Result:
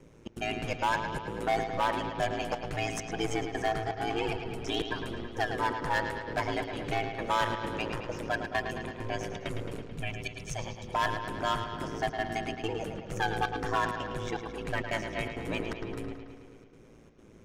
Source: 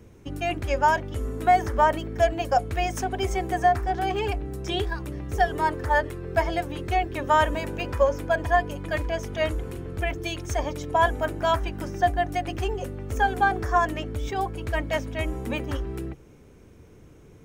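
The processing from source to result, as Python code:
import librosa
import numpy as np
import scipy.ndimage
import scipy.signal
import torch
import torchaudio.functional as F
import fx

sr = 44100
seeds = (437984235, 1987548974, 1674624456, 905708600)

y = scipy.signal.sosfilt(scipy.signal.butter(2, 10000.0, 'lowpass', fs=sr, output='sos'), x)
y = fx.low_shelf(y, sr, hz=110.0, db=-8.0)
y = fx.spec_box(y, sr, start_s=9.83, length_s=1.11, low_hz=200.0, high_hz=2200.0, gain_db=-9)
y = fx.dynamic_eq(y, sr, hz=650.0, q=1.6, threshold_db=-33.0, ratio=4.0, max_db=-6)
y = np.clip(10.0 ** (21.5 / 20.0) * y, -1.0, 1.0) / 10.0 ** (21.5 / 20.0)
y = fx.step_gate(y, sr, bpm=165, pattern='xxx.xxxx.x', floor_db=-24.0, edge_ms=4.5)
y = y * np.sin(2.0 * np.pi * 56.0 * np.arange(len(y)) / sr)
y = fx.echo_bbd(y, sr, ms=109, stages=4096, feedback_pct=68, wet_db=-8)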